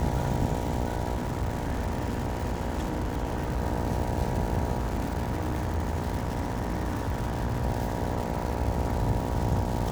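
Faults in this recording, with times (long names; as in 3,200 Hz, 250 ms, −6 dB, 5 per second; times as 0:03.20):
mains buzz 60 Hz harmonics 16 −33 dBFS
surface crackle 310 per second −32 dBFS
0:01.15–0:03.60: clipping −24.5 dBFS
0:04.78–0:07.65: clipping −24 dBFS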